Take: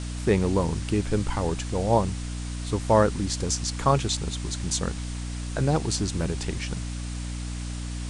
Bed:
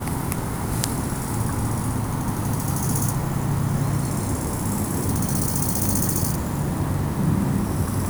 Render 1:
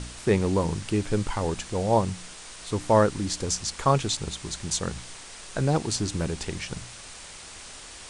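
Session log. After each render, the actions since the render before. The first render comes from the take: de-hum 60 Hz, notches 5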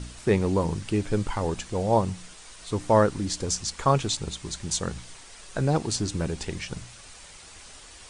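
noise reduction 6 dB, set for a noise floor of -44 dBFS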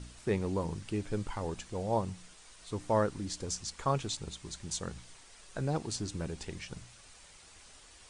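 trim -9 dB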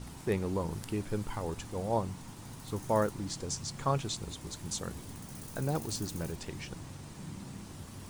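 add bed -23 dB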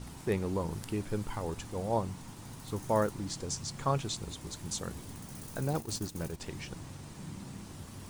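5.73–6.40 s: gate -39 dBFS, range -9 dB

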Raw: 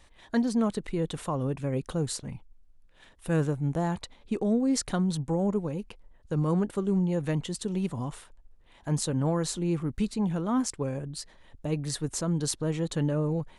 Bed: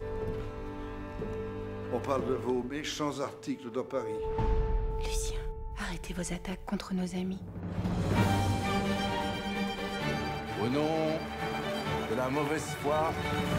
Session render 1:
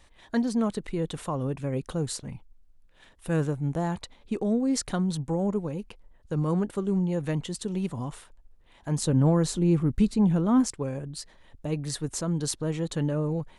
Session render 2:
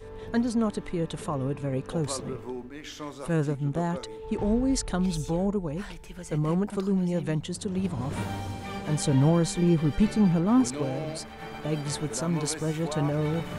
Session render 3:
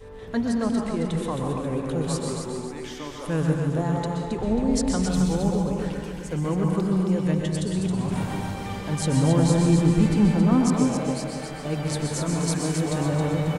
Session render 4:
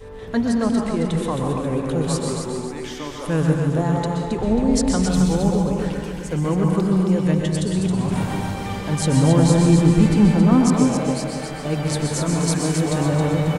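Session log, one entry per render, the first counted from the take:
9.02–10.71 s: bass shelf 450 Hz +7.5 dB
add bed -5.5 dB
feedback delay 270 ms, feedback 37%, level -6 dB; plate-style reverb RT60 0.73 s, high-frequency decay 0.8×, pre-delay 110 ms, DRR 2 dB
trim +4.5 dB

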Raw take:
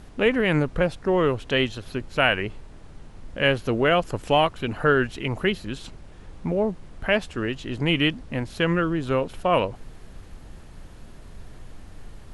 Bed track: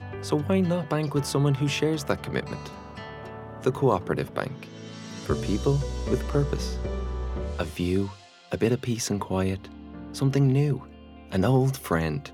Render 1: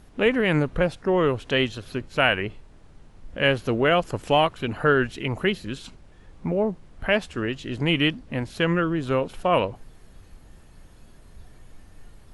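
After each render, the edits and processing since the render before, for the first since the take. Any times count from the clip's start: noise print and reduce 6 dB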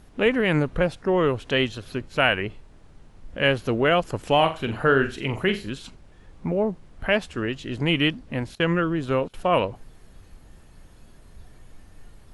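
4.35–5.70 s: flutter echo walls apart 7.5 m, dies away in 0.29 s; 8.55–9.34 s: gate -34 dBFS, range -18 dB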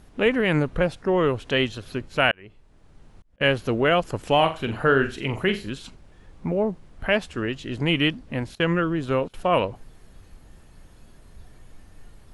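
2.31–3.41 s: slow attack 795 ms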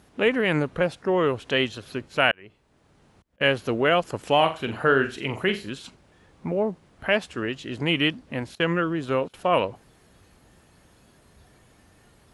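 high-pass 62 Hz; bass shelf 170 Hz -6.5 dB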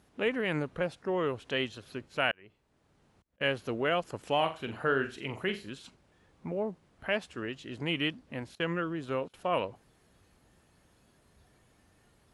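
trim -8.5 dB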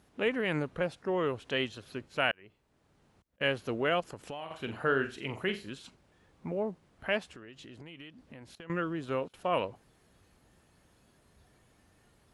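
4.00–4.51 s: compression 5:1, threshold -38 dBFS; 7.22–8.70 s: compression 8:1, threshold -45 dBFS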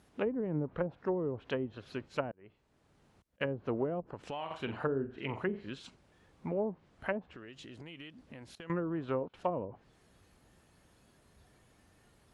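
low-pass that closes with the level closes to 380 Hz, closed at -26.5 dBFS; dynamic bell 940 Hz, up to +5 dB, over -54 dBFS, Q 3.1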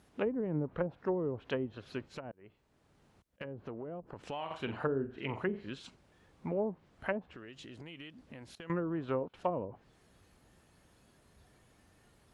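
2.17–4.16 s: compression, threshold -39 dBFS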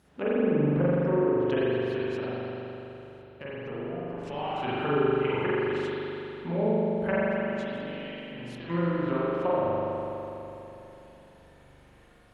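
spring tank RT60 3.4 s, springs 41 ms, chirp 75 ms, DRR -9 dB

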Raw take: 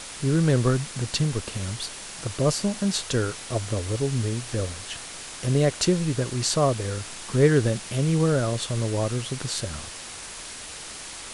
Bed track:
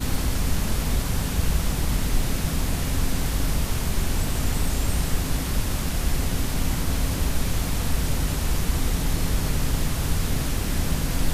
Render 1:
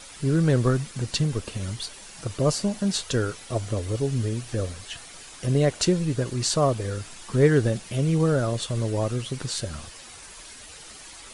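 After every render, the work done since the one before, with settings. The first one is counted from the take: noise reduction 9 dB, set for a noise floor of -39 dBFS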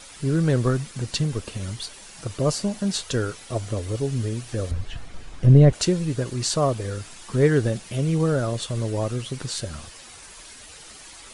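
4.71–5.73 s: RIAA curve playback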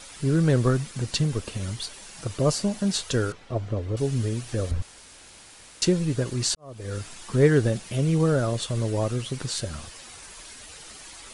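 3.32–3.97 s: tape spacing loss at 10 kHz 25 dB; 4.82–5.82 s: room tone; 6.55–6.96 s: fade in quadratic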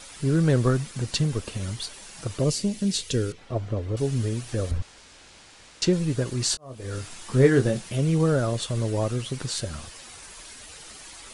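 2.44–3.38 s: high-order bell 980 Hz -11 dB; 4.78–5.93 s: low-pass 6.6 kHz; 6.47–7.89 s: doubling 23 ms -7 dB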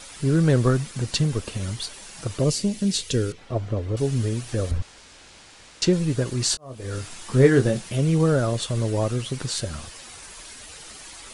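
trim +2 dB

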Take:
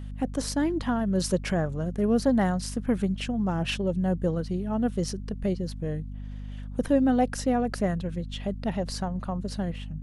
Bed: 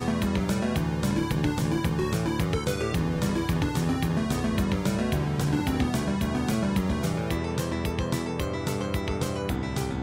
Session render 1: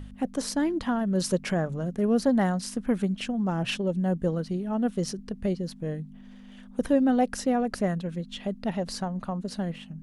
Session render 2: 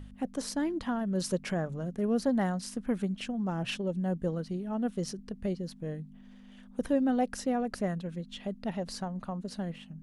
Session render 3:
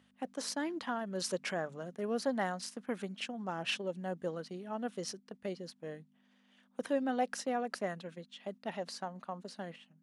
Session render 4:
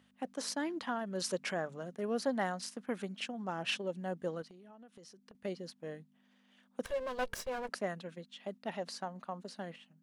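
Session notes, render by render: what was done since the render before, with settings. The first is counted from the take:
de-hum 50 Hz, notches 3
trim -5 dB
gate -39 dBFS, range -8 dB; frequency weighting A
4.42–5.35 s: compression 12:1, threshold -52 dBFS; 6.85–7.69 s: comb filter that takes the minimum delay 1.8 ms

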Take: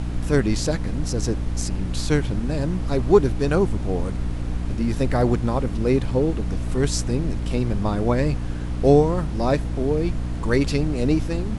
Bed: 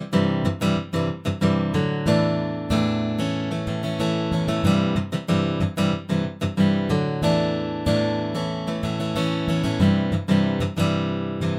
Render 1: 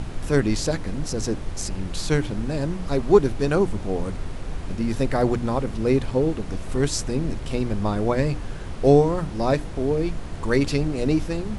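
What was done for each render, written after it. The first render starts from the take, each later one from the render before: hum notches 60/120/180/240/300 Hz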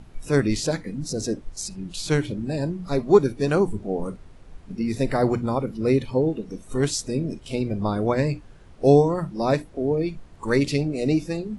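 noise print and reduce 16 dB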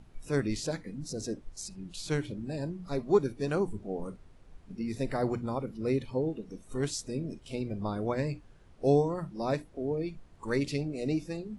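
trim -9 dB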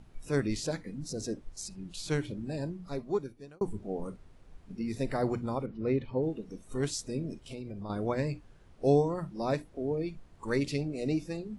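2.60–3.61 s: fade out; 5.66–6.23 s: low-pass 2.8 kHz; 7.44–7.90 s: compression 4:1, threshold -37 dBFS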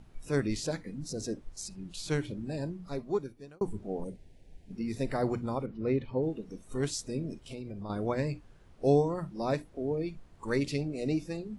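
4.04–4.72 s: Butterworth band-stop 1.2 kHz, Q 1.1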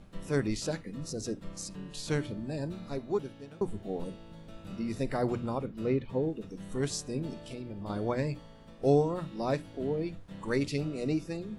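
add bed -27 dB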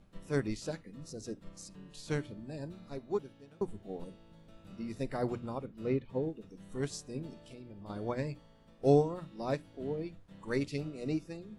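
upward expansion 1.5:1, over -38 dBFS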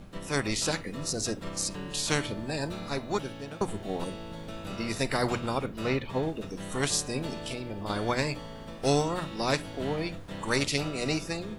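level rider gain up to 5 dB; spectrum-flattening compressor 2:1

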